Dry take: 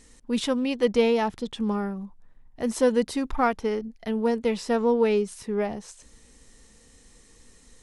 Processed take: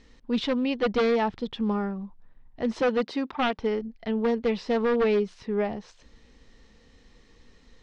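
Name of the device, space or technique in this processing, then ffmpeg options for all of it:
synthesiser wavefolder: -filter_complex "[0:a]asettb=1/sr,asplit=3[link_01][link_02][link_03];[link_01]atrim=end=2.814[link_04];[link_02]atrim=start=2.81:end=3.59,asetpts=PTS-STARTPTS,afade=type=in:duration=0.004:curve=qsin,afade=type=out:start_time=0.776:duration=0.004:curve=qsin,highpass=210[link_05];[link_03]atrim=start=3.586[link_06];[link_04][link_05]acrossfade=duration=0.004:curve1=hsin:curve2=qsin[link_07];[link_07][link_06]acrossfade=duration=0.004:curve1=qsin:curve2=hsin,aeval=exprs='0.141*(abs(mod(val(0)/0.141+3,4)-2)-1)':channel_layout=same,lowpass=frequency=4600:width=0.5412,lowpass=frequency=4600:width=1.3066"

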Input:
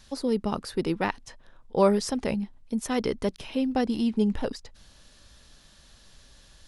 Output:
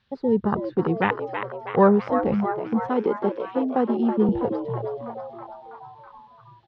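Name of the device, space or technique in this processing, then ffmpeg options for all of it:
frequency-shifting delay pedal into a guitar cabinet: -filter_complex "[0:a]afwtdn=0.0316,asplit=8[link_01][link_02][link_03][link_04][link_05][link_06][link_07][link_08];[link_02]adelay=325,afreqshift=110,volume=-8dB[link_09];[link_03]adelay=650,afreqshift=220,volume=-12.6dB[link_10];[link_04]adelay=975,afreqshift=330,volume=-17.2dB[link_11];[link_05]adelay=1300,afreqshift=440,volume=-21.7dB[link_12];[link_06]adelay=1625,afreqshift=550,volume=-26.3dB[link_13];[link_07]adelay=1950,afreqshift=660,volume=-30.9dB[link_14];[link_08]adelay=2275,afreqshift=770,volume=-35.5dB[link_15];[link_01][link_09][link_10][link_11][link_12][link_13][link_14][link_15]amix=inputs=8:normalize=0,highpass=95,equalizer=frequency=110:width_type=q:width=4:gain=5,equalizer=frequency=290:width_type=q:width=4:gain=-9,equalizer=frequency=630:width_type=q:width=4:gain=-7,lowpass=frequency=3500:width=0.5412,lowpass=frequency=3500:width=1.3066,asettb=1/sr,asplit=3[link_16][link_17][link_18];[link_16]atrim=end=2.894[link_19];[link_17]atrim=start=2.89:end=4.29,asetpts=PTS-STARTPTS,afade=type=in:duration=0.004:curve=qsin,afade=type=out:start_time=1.396:duration=0.004:curve=qsin,highpass=frequency=210:width=0.5412,highpass=frequency=210:width=1.3066[link_20];[link_18]atrim=start=4.286[link_21];[link_19][link_20]acrossfade=duration=0.004:curve1=hsin:curve2=qsin[link_22];[link_22][link_21]acrossfade=duration=0.004:curve1=qsin:curve2=hsin,volume=7dB"

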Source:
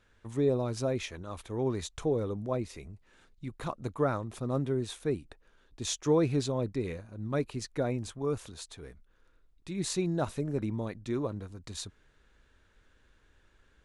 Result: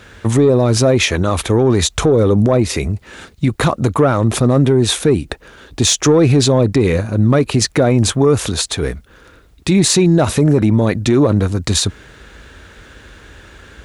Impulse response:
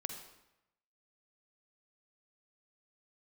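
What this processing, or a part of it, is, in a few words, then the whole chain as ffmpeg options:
mastering chain: -af "highpass=frequency=45:width=0.5412,highpass=frequency=45:width=1.3066,equalizer=frequency=1000:width_type=o:width=0.36:gain=-2.5,acompressor=threshold=-33dB:ratio=2,asoftclip=type=tanh:threshold=-24.5dB,alimiter=level_in=31.5dB:limit=-1dB:release=50:level=0:latency=1,volume=-4dB"

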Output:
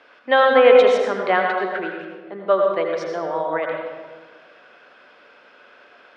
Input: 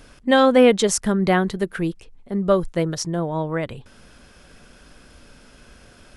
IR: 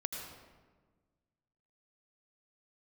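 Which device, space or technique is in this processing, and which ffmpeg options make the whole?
supermarket ceiling speaker: -filter_complex "[0:a]highpass=280,lowpass=5200,acrossover=split=420 3500:gain=0.141 1 0.0794[link_01][link_02][link_03];[link_01][link_02][link_03]amix=inputs=3:normalize=0[link_04];[1:a]atrim=start_sample=2205[link_05];[link_04][link_05]afir=irnorm=-1:irlink=0,volume=4dB"

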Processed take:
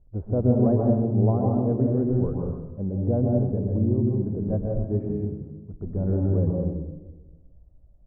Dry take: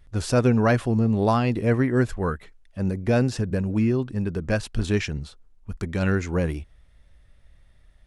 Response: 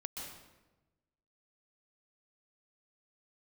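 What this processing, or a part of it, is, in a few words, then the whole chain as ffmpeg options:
next room: -filter_complex "[0:a]lowpass=frequency=690:width=0.5412,lowpass=frequency=690:width=1.3066[link_01];[1:a]atrim=start_sample=2205[link_02];[link_01][link_02]afir=irnorm=-1:irlink=0,asettb=1/sr,asplit=3[link_03][link_04][link_05];[link_03]atrim=end=4.864[link_06];[link_04]atrim=start=4.86:end=5.74,asetpts=PTS-STARTPTS,afade=type=in:duration=0.004:curve=qsin,afade=type=out:start_time=0.876:duration=0.004:curve=qsin,highpass=86[link_07];[link_05]atrim=start=5.736[link_08];[link_06][link_07]acrossfade=duration=0.004:curve1=hsin:curve2=qsin[link_09];[link_09][link_08]acrossfade=duration=0.004:curve1=qsin:curve2=hsin"

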